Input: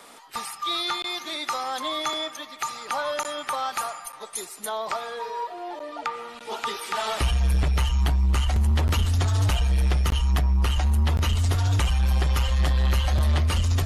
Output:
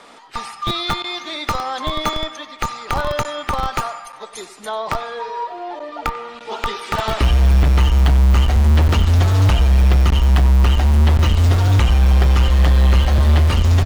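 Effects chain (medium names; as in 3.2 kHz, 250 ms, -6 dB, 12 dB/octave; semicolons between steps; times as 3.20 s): distance through air 84 m; echo from a far wall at 16 m, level -16 dB; in parallel at -4.5 dB: Schmitt trigger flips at -21 dBFS; on the sum: trim +5.5 dB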